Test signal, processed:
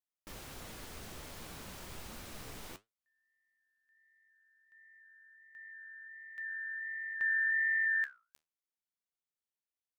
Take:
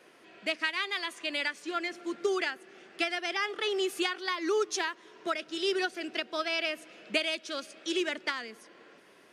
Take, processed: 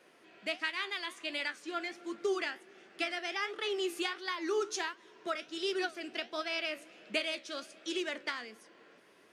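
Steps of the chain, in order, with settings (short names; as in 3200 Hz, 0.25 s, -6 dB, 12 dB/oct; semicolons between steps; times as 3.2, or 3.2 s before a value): flange 1.4 Hz, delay 8.5 ms, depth 9.5 ms, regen +69%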